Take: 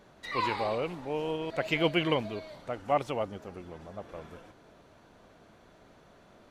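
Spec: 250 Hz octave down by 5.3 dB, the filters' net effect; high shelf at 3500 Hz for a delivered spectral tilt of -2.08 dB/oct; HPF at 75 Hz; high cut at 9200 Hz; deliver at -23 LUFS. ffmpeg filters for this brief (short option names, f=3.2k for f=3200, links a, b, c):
-af "highpass=75,lowpass=9.2k,equalizer=f=250:t=o:g=-8.5,highshelf=f=3.5k:g=5,volume=9dB"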